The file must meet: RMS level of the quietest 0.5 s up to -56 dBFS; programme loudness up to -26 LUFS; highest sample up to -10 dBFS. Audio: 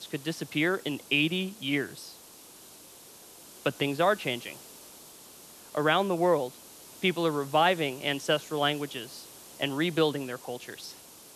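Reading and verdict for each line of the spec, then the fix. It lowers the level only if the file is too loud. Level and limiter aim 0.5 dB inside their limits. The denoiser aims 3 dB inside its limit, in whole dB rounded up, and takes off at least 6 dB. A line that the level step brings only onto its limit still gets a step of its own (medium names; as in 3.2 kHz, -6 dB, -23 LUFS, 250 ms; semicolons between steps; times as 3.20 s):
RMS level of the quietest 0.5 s -51 dBFS: fail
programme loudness -28.5 LUFS: pass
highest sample -11.5 dBFS: pass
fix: noise reduction 8 dB, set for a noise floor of -51 dBFS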